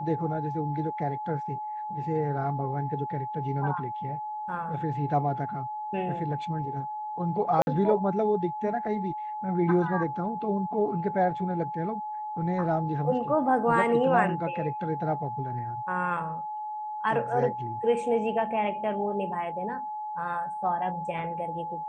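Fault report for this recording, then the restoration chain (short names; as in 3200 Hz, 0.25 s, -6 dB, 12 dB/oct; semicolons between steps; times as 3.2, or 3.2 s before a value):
tone 850 Hz -32 dBFS
7.62–7.67 gap 51 ms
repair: notch 850 Hz, Q 30; interpolate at 7.62, 51 ms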